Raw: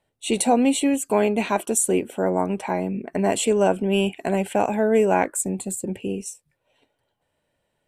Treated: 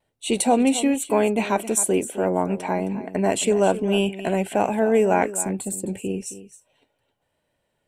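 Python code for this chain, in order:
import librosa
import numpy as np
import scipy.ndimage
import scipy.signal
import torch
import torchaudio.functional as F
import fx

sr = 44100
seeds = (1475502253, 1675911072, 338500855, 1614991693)

y = x + 10.0 ** (-14.0 / 20.0) * np.pad(x, (int(265 * sr / 1000.0), 0))[:len(x)]
y = fx.vibrato(y, sr, rate_hz=1.1, depth_cents=28.0)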